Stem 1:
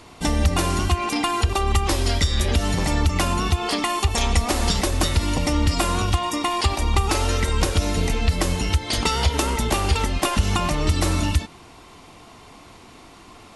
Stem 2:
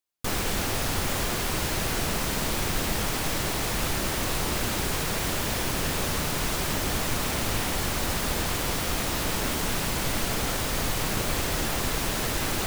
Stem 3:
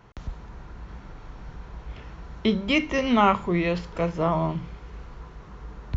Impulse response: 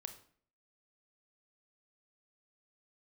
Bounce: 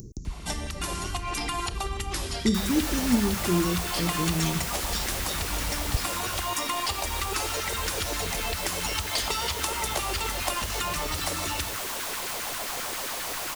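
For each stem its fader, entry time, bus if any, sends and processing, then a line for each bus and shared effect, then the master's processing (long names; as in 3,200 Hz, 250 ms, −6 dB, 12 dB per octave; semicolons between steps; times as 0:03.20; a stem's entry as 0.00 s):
+2.0 dB, 0.25 s, bus A, send −4.5 dB, no echo send, downward compressor 5 to 1, threshold −26 dBFS, peak gain reduction 12 dB; automatic ducking −11 dB, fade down 0.25 s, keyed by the third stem
−7.5 dB, 2.30 s, bus A, no send, echo send −4 dB, low-shelf EQ 250 Hz −11 dB
+0.5 dB, 0.00 s, no bus, no send, no echo send, elliptic band-stop filter 370–6,100 Hz, stop band 40 dB; upward compression, threshold −32 dBFS
bus A: 0.0 dB, auto-filter high-pass saw down 7.5 Hz 320–1,700 Hz; downward compressor, threshold −31 dBFS, peak gain reduction 12 dB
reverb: on, RT60 0.55 s, pre-delay 25 ms
echo: single-tap delay 159 ms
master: high-shelf EQ 3,800 Hz +5.5 dB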